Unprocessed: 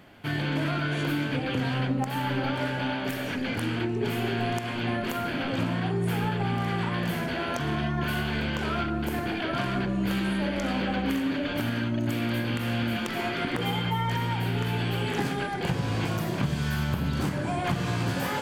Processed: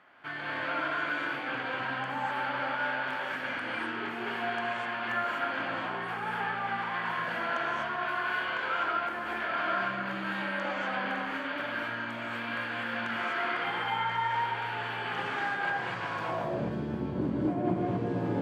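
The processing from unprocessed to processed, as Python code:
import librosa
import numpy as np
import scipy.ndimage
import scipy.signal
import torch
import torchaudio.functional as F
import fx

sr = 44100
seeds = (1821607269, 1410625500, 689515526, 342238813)

y = fx.rev_gated(x, sr, seeds[0], gate_ms=280, shape='rising', drr_db=-3.5)
y = fx.filter_sweep_bandpass(y, sr, from_hz=1300.0, to_hz=350.0, start_s=16.14, end_s=16.84, q=1.6)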